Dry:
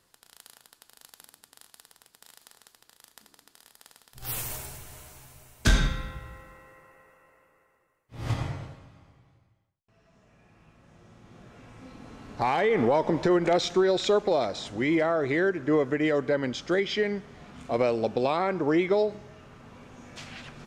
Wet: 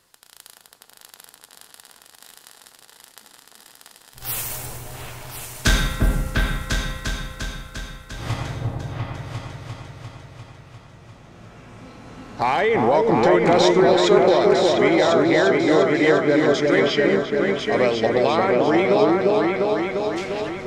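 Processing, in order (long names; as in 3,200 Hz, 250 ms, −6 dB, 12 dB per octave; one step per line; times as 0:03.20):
low-shelf EQ 490 Hz −4.5 dB
on a send: echo whose low-pass opens from repeat to repeat 349 ms, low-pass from 750 Hz, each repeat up 2 octaves, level 0 dB
on the sum: level +6.5 dB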